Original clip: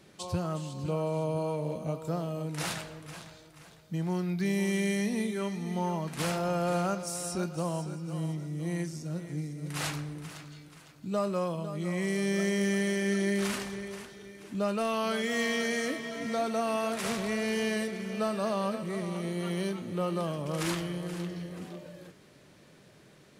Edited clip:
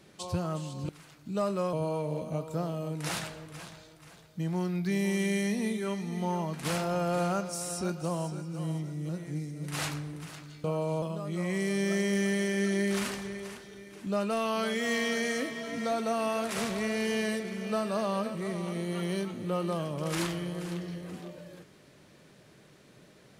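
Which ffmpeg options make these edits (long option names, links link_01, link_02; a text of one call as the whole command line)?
ffmpeg -i in.wav -filter_complex "[0:a]asplit=6[link_01][link_02][link_03][link_04][link_05][link_06];[link_01]atrim=end=0.892[link_07];[link_02]atrim=start=10.658:end=11.502[link_08];[link_03]atrim=start=1.268:end=8.632[link_09];[link_04]atrim=start=9.108:end=10.662[link_10];[link_05]atrim=start=0.888:end=1.272[link_11];[link_06]atrim=start=11.498[link_12];[link_07][link_08]acrossfade=duration=0.004:curve1=hsin:curve2=hsin[link_13];[link_13][link_09]acrossfade=duration=0.004:curve1=hsin:curve2=hsin[link_14];[link_14][link_10]acrossfade=duration=0.004:curve1=hsin:curve2=hsin[link_15];[link_15][link_11]acrossfade=duration=0.004:curve1=hsin:curve2=hsin[link_16];[link_16][link_12]acrossfade=duration=0.004:curve1=hsin:curve2=hsin" out.wav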